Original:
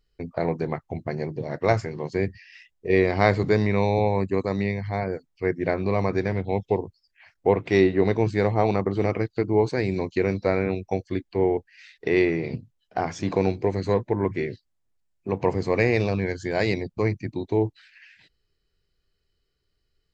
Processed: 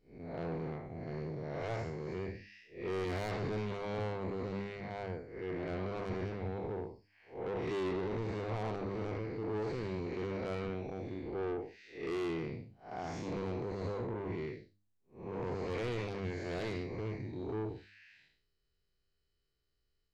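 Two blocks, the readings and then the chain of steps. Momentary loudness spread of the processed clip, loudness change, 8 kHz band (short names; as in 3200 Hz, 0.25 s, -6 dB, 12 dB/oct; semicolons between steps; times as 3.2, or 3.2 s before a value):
7 LU, -14.5 dB, n/a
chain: time blur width 0.189 s; soft clip -26.5 dBFS, distortion -7 dB; de-hum 100.6 Hz, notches 3; gain -6 dB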